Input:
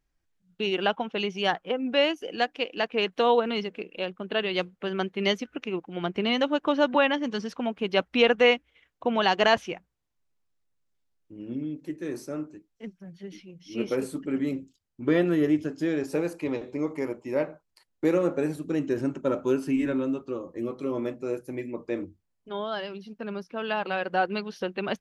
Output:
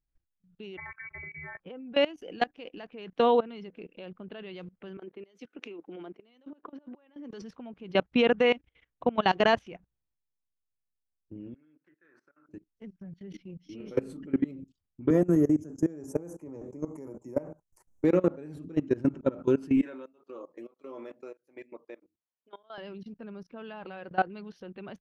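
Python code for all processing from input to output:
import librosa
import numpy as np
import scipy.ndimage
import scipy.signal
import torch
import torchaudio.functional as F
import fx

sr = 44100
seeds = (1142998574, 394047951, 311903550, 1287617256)

y = fx.chain(x, sr, fx.robotise(hz=235.0),
    fx.freq_invert(carrier_hz=2500),
    fx.band_squash(depth_pct=100), at=(0.77, 1.6))
y = fx.chain(y, sr, fx.over_compress(threshold_db=-35.0, ratio=-1.0),
    fx.ladder_highpass(hz=260.0, resonance_pct=35),
    fx.band_widen(depth_pct=100), at=(4.97, 7.42))
y = fx.chain(y, sr, fx.bandpass_q(hz=1500.0, q=5.3),
    fx.over_compress(threshold_db=-59.0, ratio=-1.0), at=(11.54, 12.49))
y = fx.chain(y, sr, fx.low_shelf(hz=62.0, db=2.5),
    fx.doubler(ms=37.0, db=-4.5), at=(13.77, 14.17))
y = fx.chain(y, sr, fx.curve_eq(hz=(950.0, 4200.0, 6100.0), db=(0, -21, 13)),
    fx.band_squash(depth_pct=40), at=(15.1, 18.04))
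y = fx.chain(y, sr, fx.highpass(hz=550.0, slope=12),
    fx.tremolo_abs(hz=1.6), at=(19.82, 22.78))
y = fx.lowpass(y, sr, hz=3500.0, slope=6)
y = fx.low_shelf(y, sr, hz=240.0, db=9.5)
y = fx.level_steps(y, sr, step_db=21)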